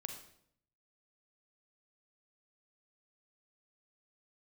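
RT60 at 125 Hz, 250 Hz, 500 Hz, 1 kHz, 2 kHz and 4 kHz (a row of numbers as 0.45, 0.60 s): 0.95, 0.85, 0.75, 0.60, 0.60, 0.55 s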